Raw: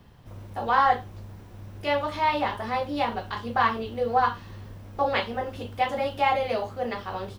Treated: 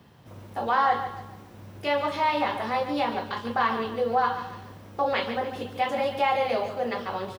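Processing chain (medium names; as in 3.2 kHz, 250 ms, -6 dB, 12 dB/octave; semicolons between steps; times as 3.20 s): high-pass 120 Hz 12 dB/octave; in parallel at +2.5 dB: peak limiter -19.5 dBFS, peak gain reduction 10 dB; on the sum: feedback delay 143 ms, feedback 37%, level -10 dB; trim -6 dB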